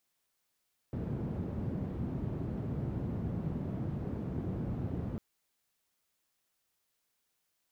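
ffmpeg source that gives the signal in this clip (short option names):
-f lavfi -i "anoisesrc=c=white:d=4.25:r=44100:seed=1,highpass=f=83,lowpass=f=170,volume=-7.9dB"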